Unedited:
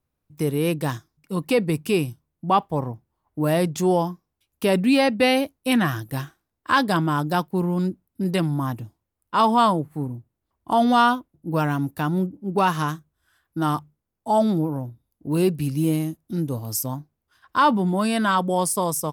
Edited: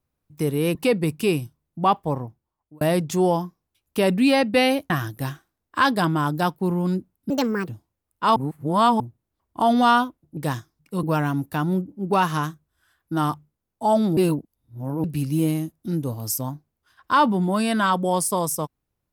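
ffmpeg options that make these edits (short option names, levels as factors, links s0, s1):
-filter_complex "[0:a]asplit=12[s0][s1][s2][s3][s4][s5][s6][s7][s8][s9][s10][s11];[s0]atrim=end=0.752[s12];[s1]atrim=start=1.408:end=3.47,asetpts=PTS-STARTPTS,afade=t=out:st=1.362:d=0.7[s13];[s2]atrim=start=3.47:end=5.562,asetpts=PTS-STARTPTS,afade=t=in:d=0.004:c=hsin[s14];[s3]atrim=start=5.818:end=8.224[s15];[s4]atrim=start=8.22:end=8.79,asetpts=PTS-STARTPTS,asetrate=66150,aresample=44100[s16];[s5]atrim=start=8.786:end=9.472[s17];[s6]atrim=start=9.468:end=10.112,asetpts=PTS-STARTPTS,areverse[s18];[s7]atrim=start=10.108:end=11.482[s19];[s8]atrim=start=0.748:end=1.412[s20];[s9]atrim=start=11.478:end=14.622[s21];[s10]atrim=start=14.618:end=15.492,asetpts=PTS-STARTPTS,areverse[s22];[s11]atrim=start=15.488[s23];[s13][s14]concat=n=2:v=0:a=1[s24];[s12][s24]acrossfade=d=0.004:c1=hsin:c2=hsin[s25];[s25][s15]acrossfade=d=0.004:c1=hsin:c2=hsin[s26];[s26][s16]acrossfade=d=0.004:c1=hsin:c2=hsin[s27];[s27][s17]acrossfade=d=0.004:c1=hsin:c2=hsin[s28];[s28][s18]acrossfade=d=0.004:c1=hsin:c2=hsin[s29];[s29][s19]acrossfade=d=0.004:c1=hsin:c2=hsin[s30];[s30][s20]acrossfade=d=0.004:c1=hsin:c2=hsin[s31];[s31][s21]acrossfade=d=0.004:c1=hsin:c2=hsin[s32];[s32][s22]acrossfade=d=0.004:c1=hsin:c2=hsin[s33];[s33][s23]acrossfade=d=0.004:c1=hsin:c2=hsin"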